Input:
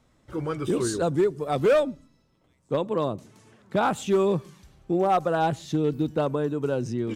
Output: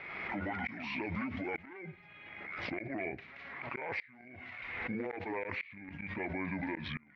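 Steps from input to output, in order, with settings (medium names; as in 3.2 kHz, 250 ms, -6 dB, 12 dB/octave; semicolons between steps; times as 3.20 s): rotating-head pitch shifter -8 st; high-pass 1.1 kHz 6 dB/octave; compression, threshold -35 dBFS, peak gain reduction 10 dB; peak limiter -36 dBFS, peak gain reduction 11.5 dB; four-pole ladder low-pass 2.3 kHz, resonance 75%; inverted gate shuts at -44 dBFS, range -28 dB; swell ahead of each attack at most 31 dB/s; trim +18 dB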